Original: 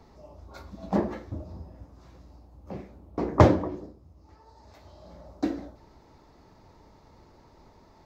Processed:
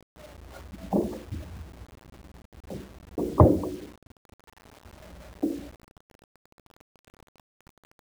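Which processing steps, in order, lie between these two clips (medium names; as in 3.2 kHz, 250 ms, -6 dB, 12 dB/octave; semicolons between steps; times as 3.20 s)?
resonances exaggerated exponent 2; low-pass that closes with the level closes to 2.8 kHz; word length cut 8-bit, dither none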